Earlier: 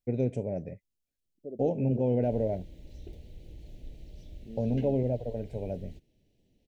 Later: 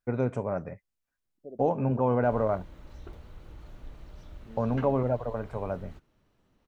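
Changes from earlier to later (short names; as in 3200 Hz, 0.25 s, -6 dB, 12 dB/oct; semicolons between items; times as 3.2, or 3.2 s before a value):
second voice -4.0 dB; master: remove Butterworth band-stop 1200 Hz, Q 0.62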